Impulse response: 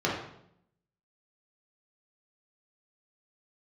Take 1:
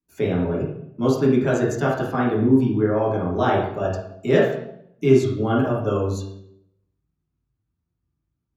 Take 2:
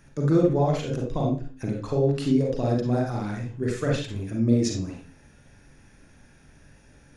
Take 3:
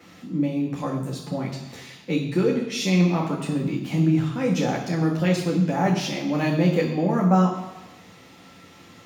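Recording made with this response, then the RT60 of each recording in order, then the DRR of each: 1; 0.70 s, 0.40 s, 1.1 s; -5.5 dB, 0.0 dB, -2.0 dB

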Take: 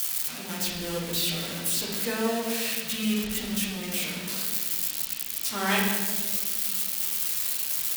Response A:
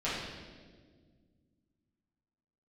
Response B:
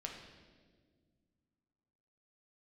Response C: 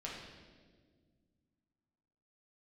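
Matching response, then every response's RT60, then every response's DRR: C; 1.6 s, 1.7 s, 1.7 s; -11.0 dB, 0.5 dB, -5.0 dB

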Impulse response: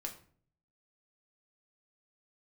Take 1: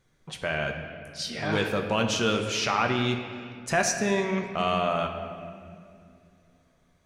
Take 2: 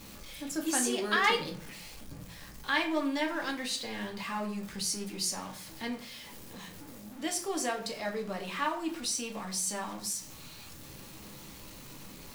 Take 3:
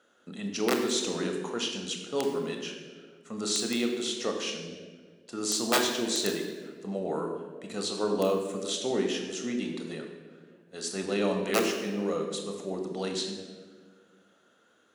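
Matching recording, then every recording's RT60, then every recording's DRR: 2; 2.3 s, 0.50 s, 1.7 s; 3.0 dB, 1.0 dB, 3.0 dB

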